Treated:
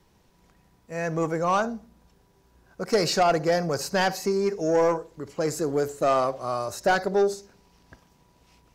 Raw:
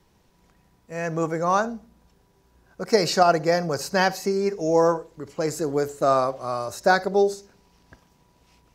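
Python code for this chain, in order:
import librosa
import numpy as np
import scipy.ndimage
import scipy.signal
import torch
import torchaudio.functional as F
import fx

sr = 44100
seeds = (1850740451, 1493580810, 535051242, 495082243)

y = 10.0 ** (-14.0 / 20.0) * np.tanh(x / 10.0 ** (-14.0 / 20.0))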